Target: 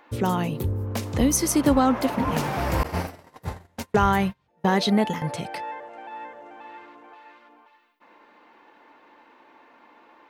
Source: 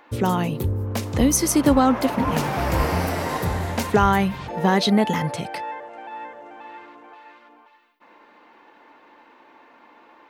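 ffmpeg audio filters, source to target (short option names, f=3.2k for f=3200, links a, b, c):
-filter_complex "[0:a]asettb=1/sr,asplit=3[a][b][c];[a]atrim=end=2.834[d];[b]atrim=start=2.83:end=5.22,asetpts=PTS-STARTPTS,afade=t=in:d=0.004:c=qsin,afade=t=out:st=2.386:d=0.004:c=qsin,agate=range=-34dB:threshold=-21dB:ratio=16:detection=peak[e];[c]atrim=start=5.216[f];[d][e]acrossfade=d=0.004:c1=hsin:c2=qsin[g];[g][f]acrossfade=d=0.004:c1=qsin:c2=hsin,volume=-2.5dB"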